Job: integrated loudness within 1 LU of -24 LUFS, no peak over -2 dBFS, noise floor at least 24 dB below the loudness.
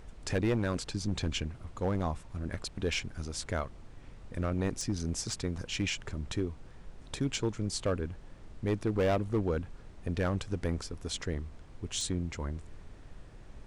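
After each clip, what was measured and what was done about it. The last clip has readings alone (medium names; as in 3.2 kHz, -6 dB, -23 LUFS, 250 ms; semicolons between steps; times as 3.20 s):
clipped samples 1.1%; clipping level -23.0 dBFS; noise floor -51 dBFS; noise floor target -59 dBFS; loudness -34.5 LUFS; peak level -23.0 dBFS; loudness target -24.0 LUFS
-> clip repair -23 dBFS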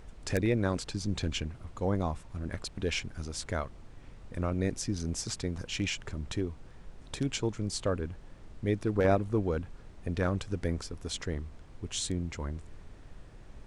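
clipped samples 0.0%; noise floor -51 dBFS; noise floor target -58 dBFS
-> noise print and reduce 7 dB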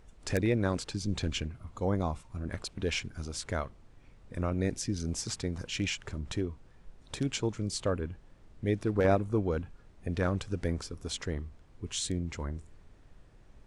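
noise floor -57 dBFS; noise floor target -58 dBFS
-> noise print and reduce 6 dB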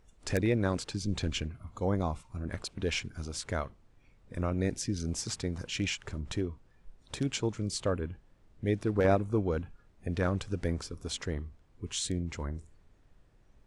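noise floor -63 dBFS; loudness -33.5 LUFS; peak level -14.0 dBFS; loudness target -24.0 LUFS
-> trim +9.5 dB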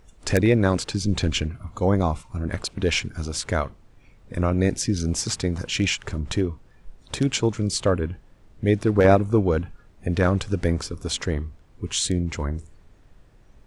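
loudness -24.0 LUFS; peak level -4.5 dBFS; noise floor -54 dBFS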